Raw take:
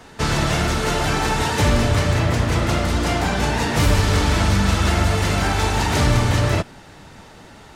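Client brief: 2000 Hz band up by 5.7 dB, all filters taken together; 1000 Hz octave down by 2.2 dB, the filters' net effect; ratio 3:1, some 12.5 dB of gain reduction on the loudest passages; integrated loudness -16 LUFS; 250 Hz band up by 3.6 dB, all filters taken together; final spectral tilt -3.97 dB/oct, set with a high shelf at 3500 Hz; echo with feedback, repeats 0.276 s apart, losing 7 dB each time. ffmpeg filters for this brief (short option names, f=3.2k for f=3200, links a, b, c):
-af "equalizer=f=250:t=o:g=5,equalizer=f=1k:t=o:g=-6,equalizer=f=2k:t=o:g=6.5,highshelf=f=3.5k:g=7.5,acompressor=threshold=-29dB:ratio=3,aecho=1:1:276|552|828|1104|1380:0.447|0.201|0.0905|0.0407|0.0183,volume=11dB"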